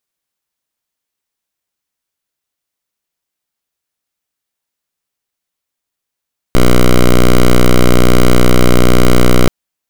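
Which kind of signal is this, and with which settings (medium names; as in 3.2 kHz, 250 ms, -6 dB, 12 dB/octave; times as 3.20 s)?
pulse 61.2 Hz, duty 7% -5 dBFS 2.93 s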